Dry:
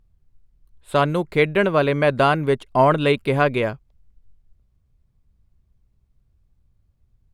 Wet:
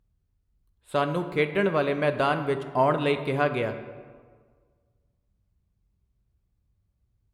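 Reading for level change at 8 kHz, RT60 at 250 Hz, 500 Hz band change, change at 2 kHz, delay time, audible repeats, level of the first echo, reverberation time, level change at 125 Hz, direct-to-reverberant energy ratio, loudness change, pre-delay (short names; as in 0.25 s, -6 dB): n/a, 1.8 s, -6.0 dB, -6.5 dB, none, none, none, 1.6 s, -8.0 dB, 8.0 dB, -6.0 dB, 4 ms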